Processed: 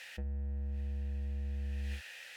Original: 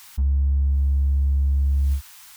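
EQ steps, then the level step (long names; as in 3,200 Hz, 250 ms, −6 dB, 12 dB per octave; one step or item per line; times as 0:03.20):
formant filter e
+16.5 dB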